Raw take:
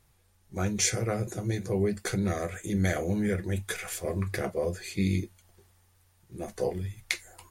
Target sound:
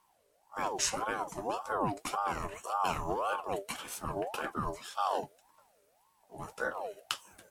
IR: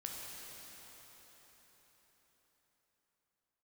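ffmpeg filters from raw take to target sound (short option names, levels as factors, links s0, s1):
-af "aeval=exprs='val(0)*sin(2*PI*750*n/s+750*0.35/1.8*sin(2*PI*1.8*n/s))':c=same,volume=0.75"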